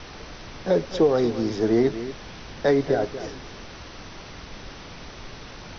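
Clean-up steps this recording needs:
noise reduction from a noise print 27 dB
echo removal 236 ms −12.5 dB

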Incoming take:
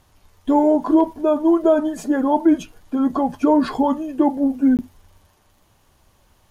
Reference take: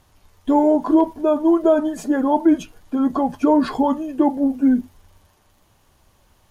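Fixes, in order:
repair the gap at 0:04.77, 18 ms

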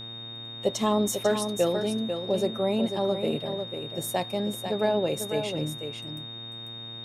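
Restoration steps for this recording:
hum removal 115 Hz, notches 28
notch filter 3,700 Hz, Q 30
echo removal 494 ms −7.5 dB

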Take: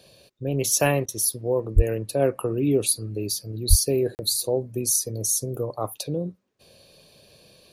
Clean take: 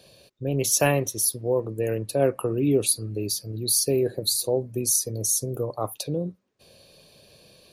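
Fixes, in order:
0:01.75–0:01.87: high-pass filter 140 Hz 24 dB per octave
0:03.69–0:03.81: high-pass filter 140 Hz 24 dB per octave
repair the gap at 0:04.15, 39 ms
repair the gap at 0:01.06, 23 ms

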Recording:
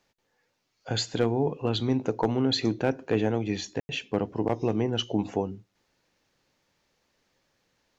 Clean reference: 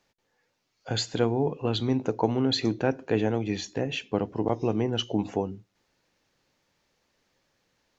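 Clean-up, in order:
clipped peaks rebuilt −13.5 dBFS
ambience match 0:03.80–0:03.89

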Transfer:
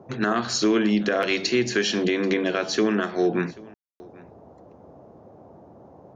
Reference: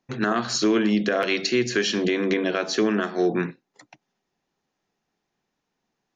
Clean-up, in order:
ambience match 0:03.74–0:04.00
noise reduction from a noise print 30 dB
echo removal 786 ms −23.5 dB

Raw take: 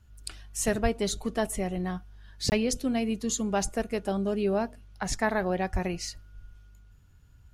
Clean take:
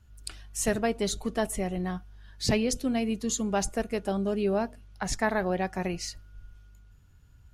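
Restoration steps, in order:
high-pass at the plosives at 0:00.82/0:05.72
repair the gap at 0:02.50, 19 ms

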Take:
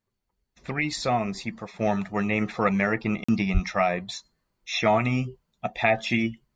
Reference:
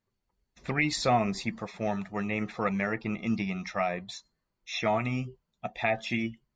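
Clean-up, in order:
high-pass at the plosives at 0:03.53
repair the gap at 0:03.24, 45 ms
level correction −6 dB, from 0:01.79

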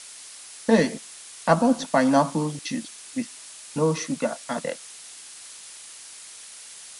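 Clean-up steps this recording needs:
noise reduction from a noise print 25 dB

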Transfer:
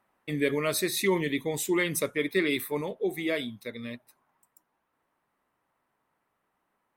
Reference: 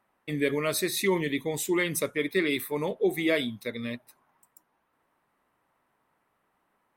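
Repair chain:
level 0 dB, from 0:02.81 +4 dB

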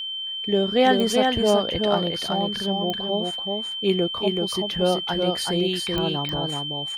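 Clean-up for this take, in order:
click removal
notch filter 3,100 Hz, Q 30
echo removal 380 ms −3.5 dB

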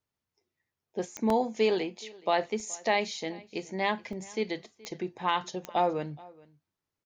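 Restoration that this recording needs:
click removal
repair the gap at 0:01.30/0:02.60/0:04.13, 2.8 ms
echo removal 423 ms −23 dB

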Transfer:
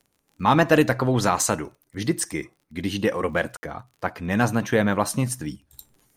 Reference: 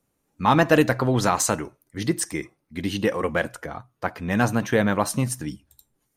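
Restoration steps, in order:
click removal
ambience match 0:03.57–0:03.63
level correction −10 dB, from 0:05.73

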